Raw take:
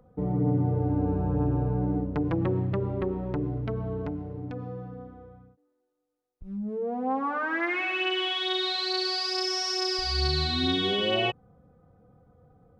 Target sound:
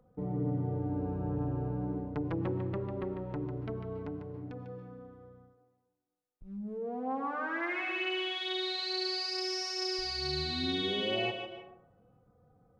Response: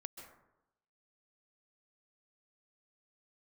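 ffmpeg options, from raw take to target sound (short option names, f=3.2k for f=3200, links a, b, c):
-filter_complex "[0:a]equalizer=f=68:t=o:w=0.25:g=-14,asplit=2[a][b];[1:a]atrim=start_sample=2205,lowshelf=f=200:g=-9,adelay=148[c];[b][c]afir=irnorm=-1:irlink=0,volume=-2dB[d];[a][d]amix=inputs=2:normalize=0,volume=-7dB"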